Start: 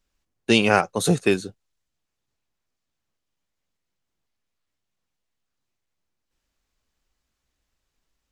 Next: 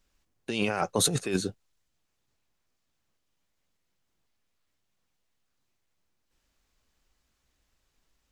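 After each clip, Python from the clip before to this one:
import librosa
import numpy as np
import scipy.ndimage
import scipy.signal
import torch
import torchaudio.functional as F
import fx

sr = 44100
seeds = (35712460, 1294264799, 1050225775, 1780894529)

y = fx.over_compress(x, sr, threshold_db=-25.0, ratio=-1.0)
y = y * 10.0 ** (-2.5 / 20.0)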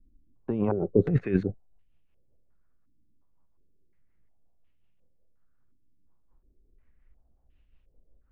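y = fx.tilt_eq(x, sr, slope=-3.5)
y = fx.rotary(y, sr, hz=5.5)
y = fx.filter_held_lowpass(y, sr, hz=2.8, low_hz=280.0, high_hz=2800.0)
y = y * 10.0 ** (-2.5 / 20.0)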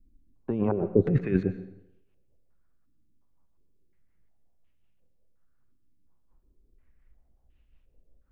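y = fx.rev_plate(x, sr, seeds[0], rt60_s=0.79, hf_ratio=0.9, predelay_ms=90, drr_db=12.0)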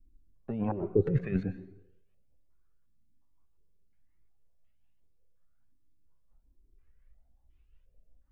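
y = fx.comb_cascade(x, sr, direction='rising', hz=1.2)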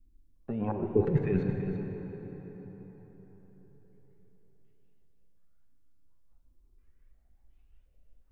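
y = x + 10.0 ** (-9.5 / 20.0) * np.pad(x, (int(334 * sr / 1000.0), 0))[:len(x)]
y = fx.rev_plate(y, sr, seeds[1], rt60_s=4.7, hf_ratio=0.65, predelay_ms=0, drr_db=4.5)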